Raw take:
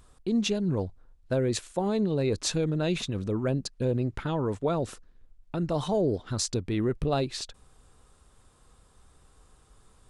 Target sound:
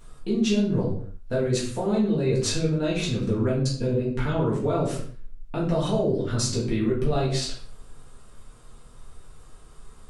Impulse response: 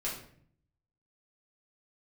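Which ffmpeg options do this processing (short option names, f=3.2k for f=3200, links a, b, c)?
-filter_complex "[0:a]acompressor=threshold=-29dB:ratio=6[a];[1:a]atrim=start_sample=2205,afade=t=out:st=0.37:d=0.01,atrim=end_sample=16758[b];[a][b]afir=irnorm=-1:irlink=0,volume=4.5dB"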